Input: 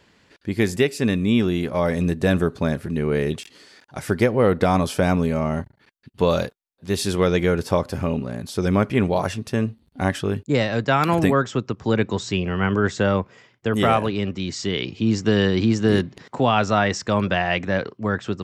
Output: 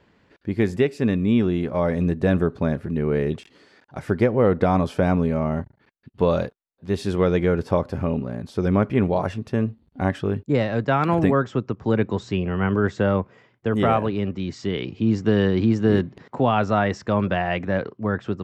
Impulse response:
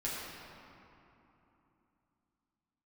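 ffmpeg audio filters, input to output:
-af "lowpass=f=1400:p=1"

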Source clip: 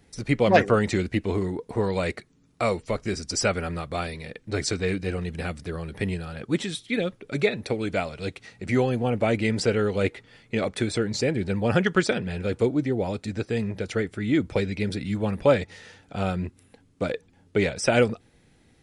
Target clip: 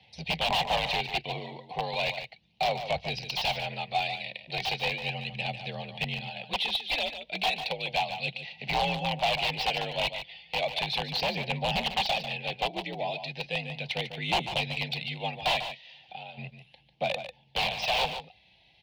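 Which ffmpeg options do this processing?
-filter_complex "[0:a]afreqshift=45,highshelf=f=1700:t=q:w=1.5:g=8.5,asplit=3[s0][s1][s2];[s0]afade=t=out:st=15.59:d=0.02[s3];[s1]acompressor=threshold=0.00794:ratio=3,afade=t=in:st=15.59:d=0.02,afade=t=out:st=16.37:d=0.02[s4];[s2]afade=t=in:st=16.37:d=0.02[s5];[s3][s4][s5]amix=inputs=3:normalize=0,aeval=exprs='(mod(5.01*val(0)+1,2)-1)/5.01':c=same,aphaser=in_gain=1:out_gain=1:delay=3.1:decay=0.34:speed=0.35:type=sinusoidal,firequalizer=gain_entry='entry(180,0);entry(280,-15);entry(770,15);entry(1300,-11);entry(2800,9);entry(4200,4);entry(7700,-29);entry(12000,-18)':delay=0.05:min_phase=1,asoftclip=type=tanh:threshold=0.335,aecho=1:1:146:0.316,volume=0.376"

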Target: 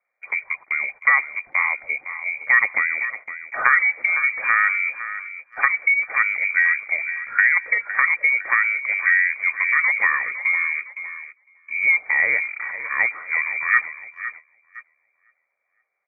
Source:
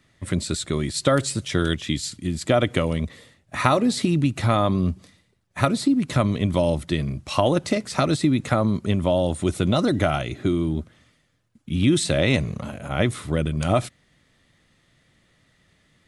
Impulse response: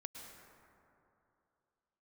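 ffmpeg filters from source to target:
-filter_complex "[0:a]highpass=f=450:p=1,lowpass=f=2100:t=q:w=0.5098,lowpass=f=2100:t=q:w=0.6013,lowpass=f=2100:t=q:w=0.9,lowpass=f=2100:t=q:w=2.563,afreqshift=-2500,tiltshelf=f=710:g=-9.5,asplit=2[s0][s1];[s1]aecho=0:1:509|1018|1527|2036:0.237|0.0901|0.0342|0.013[s2];[s0][s2]amix=inputs=2:normalize=0,agate=range=0.178:threshold=0.0178:ratio=16:detection=peak,volume=0.891"

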